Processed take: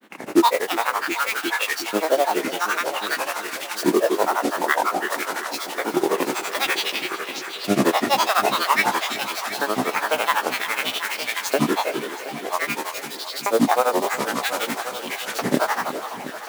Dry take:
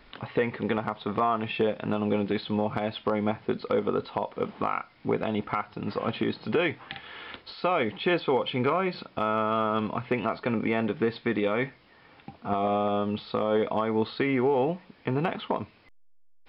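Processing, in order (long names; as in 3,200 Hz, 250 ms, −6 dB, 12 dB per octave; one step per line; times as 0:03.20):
peak hold with a decay on every bin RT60 2.22 s
high-pass filter 170 Hz
noise that follows the level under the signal 10 dB
auto-filter high-pass saw up 0.52 Hz 290–3,500 Hz
granular cloud, grains 12 per second, spray 12 ms, pitch spread up and down by 12 semitones
echo machine with several playback heads 361 ms, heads all three, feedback 47%, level −16 dB
level +3 dB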